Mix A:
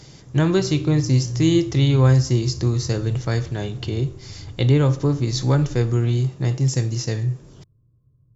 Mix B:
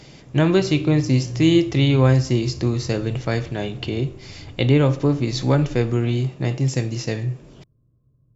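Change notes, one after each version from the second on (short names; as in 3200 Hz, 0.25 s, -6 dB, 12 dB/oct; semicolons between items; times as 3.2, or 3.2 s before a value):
master: add fifteen-band EQ 100 Hz -5 dB, 250 Hz +4 dB, 630 Hz +5 dB, 2500 Hz +7 dB, 6300 Hz -5 dB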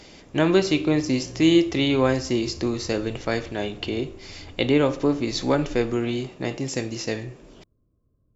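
master: add bell 130 Hz -14.5 dB 0.64 oct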